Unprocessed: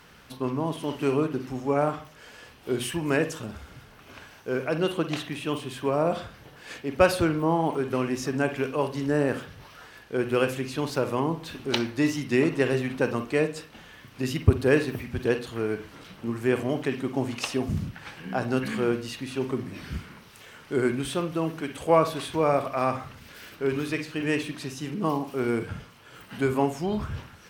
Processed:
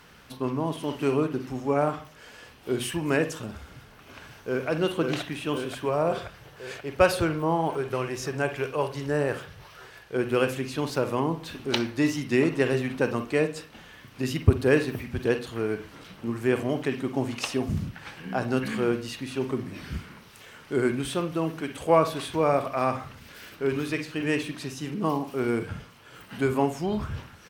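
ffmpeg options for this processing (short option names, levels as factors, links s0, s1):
-filter_complex "[0:a]asplit=2[s0][s1];[s1]afade=t=in:st=3.7:d=0.01,afade=t=out:st=4.68:d=0.01,aecho=0:1:530|1060|1590|2120|2650|3180|3710|4240|4770|5300|5830|6360:0.668344|0.501258|0.375943|0.281958|0.211468|0.158601|0.118951|0.0892131|0.0669099|0.0501824|0.0376368|0.0282276[s2];[s0][s2]amix=inputs=2:normalize=0,asettb=1/sr,asplit=3[s3][s4][s5];[s3]atrim=end=5.854[s6];[s4]atrim=start=5.85:end=10.16,asetpts=PTS-STARTPTS,afade=t=in:d=0.004:c=qsin,afade=t=out:st=4.306:d=0.004:c=qsin,equalizer=f=250:t=o:w=0.42:g=-11.5[s7];[s5]atrim=start=10.156[s8];[s6][s7]acrossfade=d=0.004:c1=hsin:c2=qsin[s9];[s9][s8]acrossfade=d=0.004:c1=qsin:c2=hsin"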